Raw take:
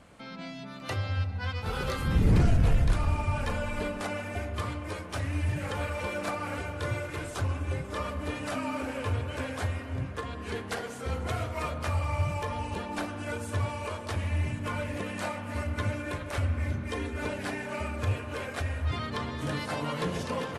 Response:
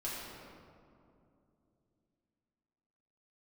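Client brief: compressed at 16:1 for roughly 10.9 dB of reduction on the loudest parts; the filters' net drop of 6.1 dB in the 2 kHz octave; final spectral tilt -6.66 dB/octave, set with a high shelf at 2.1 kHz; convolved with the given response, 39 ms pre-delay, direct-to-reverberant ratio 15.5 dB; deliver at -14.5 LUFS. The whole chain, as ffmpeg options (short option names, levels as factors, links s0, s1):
-filter_complex "[0:a]equalizer=f=2000:t=o:g=-3,highshelf=f=2100:g=-9,acompressor=threshold=0.0355:ratio=16,asplit=2[s0][s1];[1:a]atrim=start_sample=2205,adelay=39[s2];[s1][s2]afir=irnorm=-1:irlink=0,volume=0.126[s3];[s0][s3]amix=inputs=2:normalize=0,volume=11.9"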